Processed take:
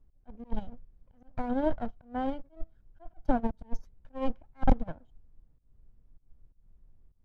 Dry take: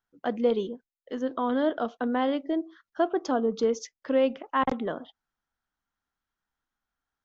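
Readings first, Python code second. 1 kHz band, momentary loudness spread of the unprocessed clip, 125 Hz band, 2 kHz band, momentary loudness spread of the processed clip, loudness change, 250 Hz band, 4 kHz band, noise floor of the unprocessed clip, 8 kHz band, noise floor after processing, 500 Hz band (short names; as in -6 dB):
-6.0 dB, 9 LU, +8.0 dB, -10.5 dB, 20 LU, -6.0 dB, -5.5 dB, -15.5 dB, under -85 dBFS, n/a, -66 dBFS, -11.0 dB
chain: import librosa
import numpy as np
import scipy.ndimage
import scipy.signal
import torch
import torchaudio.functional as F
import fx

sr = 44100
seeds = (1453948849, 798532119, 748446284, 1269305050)

y = fx.lower_of_two(x, sr, delay_ms=1.3)
y = fx.dmg_noise_colour(y, sr, seeds[0], colour='brown', level_db=-50.0)
y = fx.tilt_eq(y, sr, slope=-3.5)
y = fx.auto_swell(y, sr, attack_ms=158.0)
y = fx.upward_expand(y, sr, threshold_db=-29.0, expansion=2.5)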